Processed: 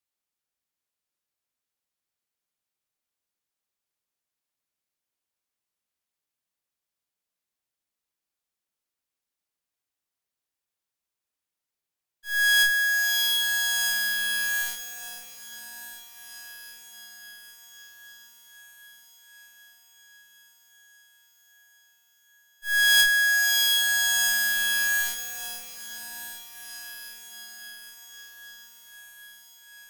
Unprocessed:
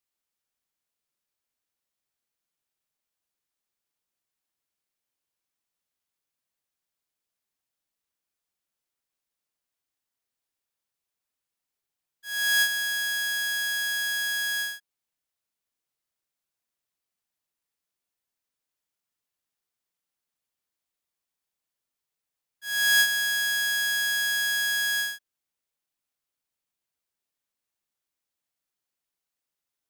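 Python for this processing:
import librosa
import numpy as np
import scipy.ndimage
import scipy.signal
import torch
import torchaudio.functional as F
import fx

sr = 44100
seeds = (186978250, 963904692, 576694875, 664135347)

y = fx.echo_diffused(x, sr, ms=737, feedback_pct=78, wet_db=-10.0)
y = fx.cheby_harmonics(y, sr, harmonics=(3, 4, 6, 8), levels_db=(-20, -7, -12, -7), full_scale_db=-13.0)
y = y * 10.0 ** (1.0 / 20.0)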